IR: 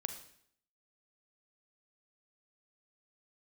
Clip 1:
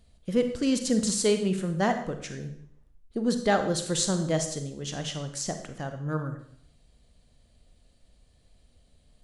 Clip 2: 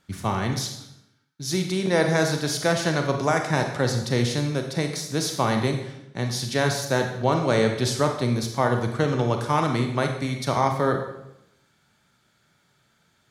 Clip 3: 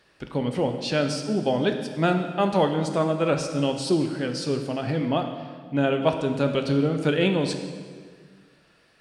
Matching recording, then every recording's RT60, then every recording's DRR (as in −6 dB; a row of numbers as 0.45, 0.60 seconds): 1; 0.65, 0.85, 1.7 seconds; 7.0, 4.0, 5.0 decibels